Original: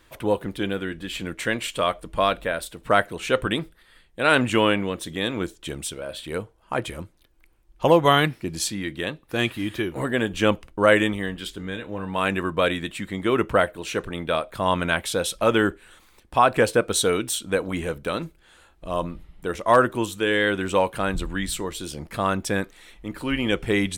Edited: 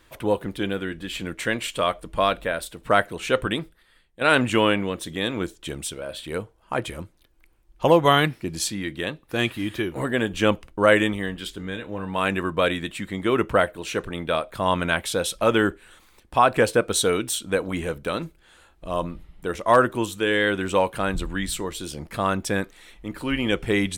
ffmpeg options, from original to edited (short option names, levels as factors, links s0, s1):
-filter_complex "[0:a]asplit=2[s0][s1];[s0]atrim=end=4.21,asetpts=PTS-STARTPTS,afade=t=out:st=3.38:d=0.83:silence=0.354813[s2];[s1]atrim=start=4.21,asetpts=PTS-STARTPTS,afade=t=in:d=0.004:c=hsin:silence=0.354813[s3];[s2][s3]concat=n=2:v=0:a=1"